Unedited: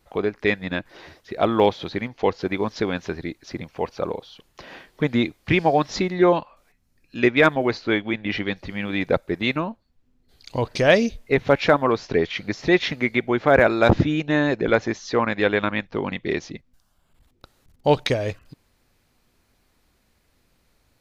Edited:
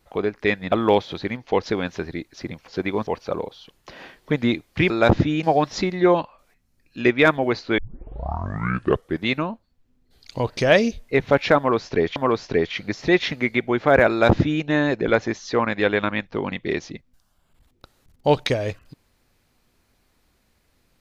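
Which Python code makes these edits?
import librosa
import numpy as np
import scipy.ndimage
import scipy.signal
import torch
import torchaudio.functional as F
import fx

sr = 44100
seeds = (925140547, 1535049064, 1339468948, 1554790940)

y = fx.edit(x, sr, fx.cut(start_s=0.72, length_s=0.71),
    fx.move(start_s=2.34, length_s=0.39, to_s=3.78),
    fx.tape_start(start_s=7.96, length_s=1.47),
    fx.repeat(start_s=11.76, length_s=0.58, count=2),
    fx.duplicate(start_s=13.7, length_s=0.53, to_s=5.61), tone=tone)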